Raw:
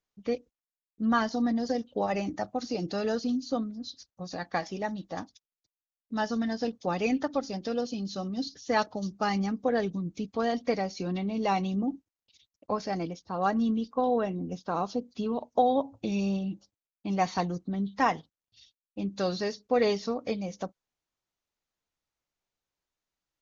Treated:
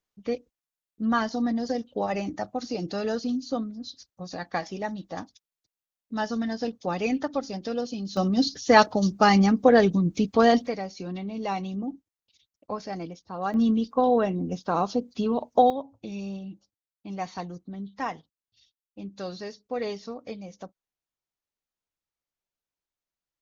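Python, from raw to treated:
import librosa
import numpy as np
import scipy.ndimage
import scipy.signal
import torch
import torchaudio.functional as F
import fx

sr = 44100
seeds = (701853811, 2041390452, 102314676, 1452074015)

y = fx.gain(x, sr, db=fx.steps((0.0, 1.0), (8.17, 10.0), (10.67, -2.5), (13.54, 5.0), (15.7, -6.0)))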